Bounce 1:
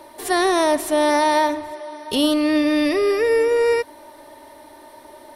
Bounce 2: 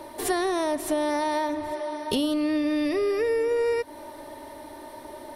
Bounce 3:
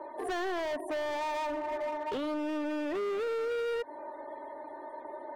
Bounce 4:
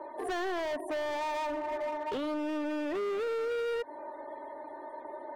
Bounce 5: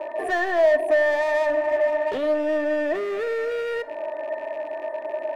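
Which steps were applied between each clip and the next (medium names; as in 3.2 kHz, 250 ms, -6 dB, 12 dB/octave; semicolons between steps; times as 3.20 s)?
bass shelf 430 Hz +6 dB; compression 6:1, threshold -23 dBFS, peak gain reduction 12 dB
loudest bins only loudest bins 64; three-band isolator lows -22 dB, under 330 Hz, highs -18 dB, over 2.2 kHz; hard clipper -31 dBFS, distortion -8 dB
no audible change
rattle on loud lows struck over -58 dBFS, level -41 dBFS; small resonant body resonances 640/1800 Hz, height 16 dB, ringing for 40 ms; on a send at -15.5 dB: reverberation, pre-delay 5 ms; on the sum: trim +3.5 dB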